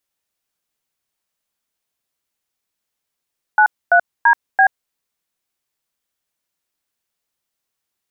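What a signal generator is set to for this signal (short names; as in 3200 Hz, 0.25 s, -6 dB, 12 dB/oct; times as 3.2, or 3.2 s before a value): DTMF "93DB", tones 81 ms, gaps 0.255 s, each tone -10.5 dBFS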